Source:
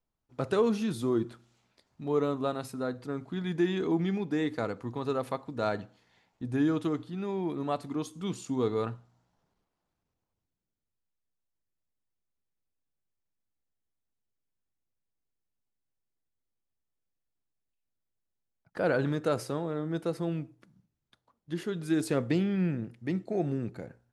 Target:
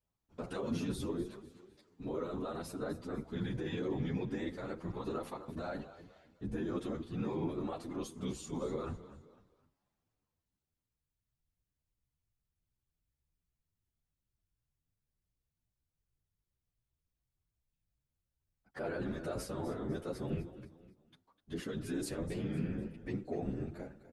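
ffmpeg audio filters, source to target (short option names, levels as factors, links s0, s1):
-filter_complex "[0:a]alimiter=level_in=1.5:limit=0.0631:level=0:latency=1:release=26,volume=0.668,asplit=2[s0][s1];[s1]aecho=0:1:252|504|756:0.2|0.0698|0.0244[s2];[s0][s2]amix=inputs=2:normalize=0,afftfilt=real='hypot(re,im)*cos(2*PI*random(0))':imag='hypot(re,im)*sin(2*PI*random(1))':win_size=512:overlap=0.75,asplit=2[s3][s4];[s4]adelay=9.8,afreqshift=2.7[s5];[s3][s5]amix=inputs=2:normalize=1,volume=2"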